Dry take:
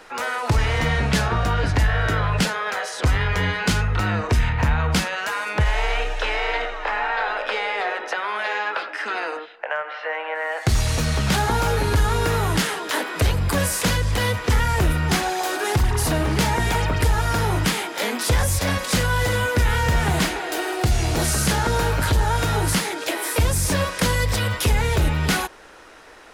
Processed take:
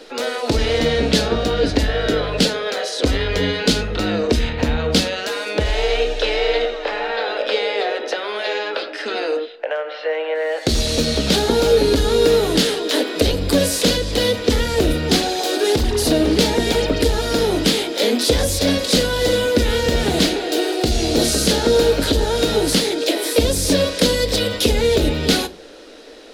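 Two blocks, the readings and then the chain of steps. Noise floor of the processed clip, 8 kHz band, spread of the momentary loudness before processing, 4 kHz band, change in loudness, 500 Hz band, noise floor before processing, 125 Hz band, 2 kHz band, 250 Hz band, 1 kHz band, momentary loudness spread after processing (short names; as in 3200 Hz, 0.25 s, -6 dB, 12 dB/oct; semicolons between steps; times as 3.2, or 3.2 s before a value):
-32 dBFS, +2.5 dB, 5 LU, +8.0 dB, +3.5 dB, +10.0 dB, -35 dBFS, -3.5 dB, -1.5 dB, +7.0 dB, -2.5 dB, 7 LU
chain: graphic EQ 125/250/500/1000/2000/4000 Hz -11/+11/+10/-8/-3/+11 dB; shoebox room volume 180 m³, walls furnished, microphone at 0.36 m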